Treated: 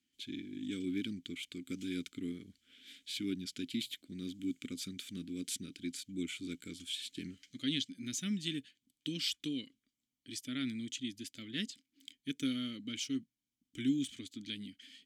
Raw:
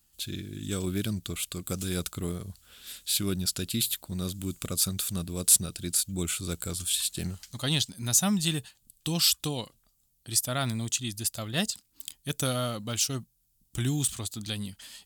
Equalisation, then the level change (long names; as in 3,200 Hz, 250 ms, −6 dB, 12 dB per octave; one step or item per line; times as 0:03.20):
graphic EQ with 15 bands 400 Hz +4 dB, 1,600 Hz +5 dB, 6,300 Hz +6 dB, 16,000 Hz +6 dB
dynamic equaliser 700 Hz, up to −6 dB, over −46 dBFS, Q 1.4
formant filter i
+3.5 dB